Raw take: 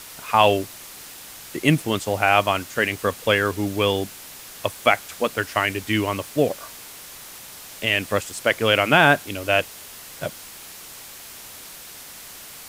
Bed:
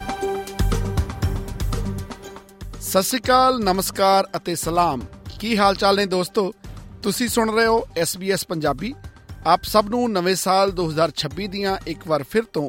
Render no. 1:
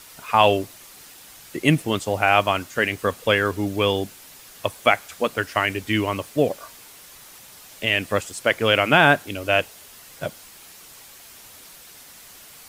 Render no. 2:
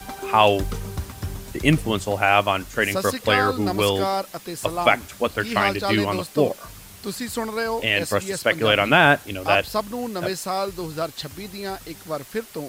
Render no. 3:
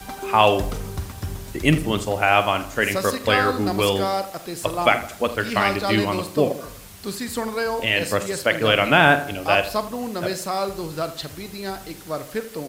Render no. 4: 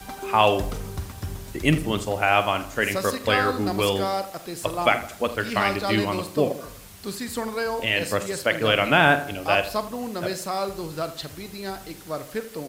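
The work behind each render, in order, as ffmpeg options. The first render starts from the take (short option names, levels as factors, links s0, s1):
-af "afftdn=nr=6:nf=-41"
-filter_complex "[1:a]volume=0.398[s0];[0:a][s0]amix=inputs=2:normalize=0"
-filter_complex "[0:a]asplit=2[s0][s1];[s1]adelay=46,volume=0.211[s2];[s0][s2]amix=inputs=2:normalize=0,asplit=2[s3][s4];[s4]adelay=81,lowpass=f=2000:p=1,volume=0.224,asplit=2[s5][s6];[s6]adelay=81,lowpass=f=2000:p=1,volume=0.49,asplit=2[s7][s8];[s8]adelay=81,lowpass=f=2000:p=1,volume=0.49,asplit=2[s9][s10];[s10]adelay=81,lowpass=f=2000:p=1,volume=0.49,asplit=2[s11][s12];[s12]adelay=81,lowpass=f=2000:p=1,volume=0.49[s13];[s3][s5][s7][s9][s11][s13]amix=inputs=6:normalize=0"
-af "volume=0.75"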